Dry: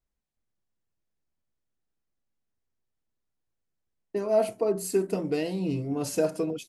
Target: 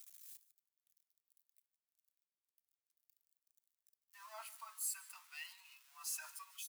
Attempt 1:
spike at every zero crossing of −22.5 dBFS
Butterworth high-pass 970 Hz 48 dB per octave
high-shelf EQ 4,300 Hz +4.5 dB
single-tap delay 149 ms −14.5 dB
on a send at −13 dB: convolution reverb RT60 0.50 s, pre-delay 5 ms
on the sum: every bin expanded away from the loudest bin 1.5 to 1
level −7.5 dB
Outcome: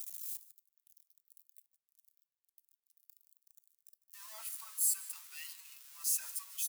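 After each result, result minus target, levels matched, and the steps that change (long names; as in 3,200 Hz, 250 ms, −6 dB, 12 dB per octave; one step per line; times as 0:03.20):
4,000 Hz band −4.5 dB; spike at every zero crossing: distortion +6 dB
change: high-shelf EQ 4,300 Hz −2.5 dB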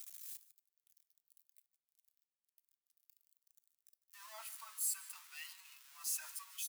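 spike at every zero crossing: distortion +6 dB
change: spike at every zero crossing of −28.5 dBFS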